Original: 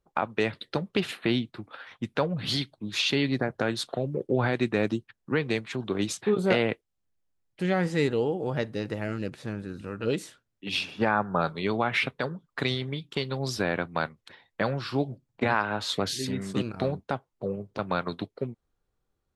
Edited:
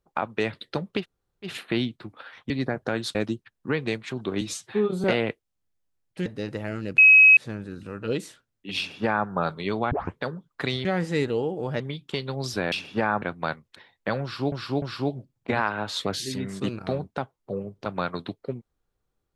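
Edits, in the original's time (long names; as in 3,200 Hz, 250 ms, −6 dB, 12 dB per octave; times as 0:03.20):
0:01.01: splice in room tone 0.46 s, crossfade 0.10 s
0:02.04–0:03.23: remove
0:03.88–0:04.78: remove
0:06.04–0:06.46: time-stretch 1.5×
0:07.68–0:08.63: move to 0:12.83
0:09.35: insert tone 2,550 Hz −9.5 dBFS 0.39 s
0:10.76–0:11.26: duplicate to 0:13.75
0:11.89: tape start 0.26 s
0:14.75–0:15.05: repeat, 3 plays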